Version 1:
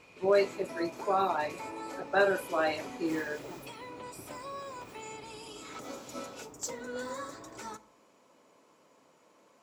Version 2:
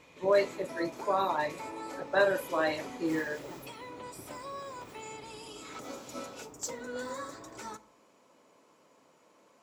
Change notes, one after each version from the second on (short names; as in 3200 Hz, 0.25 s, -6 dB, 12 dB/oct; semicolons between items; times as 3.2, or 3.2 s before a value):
speech: add ripple EQ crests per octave 1.1, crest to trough 8 dB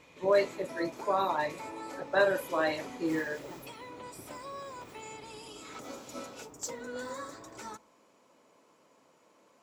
background: send -9.0 dB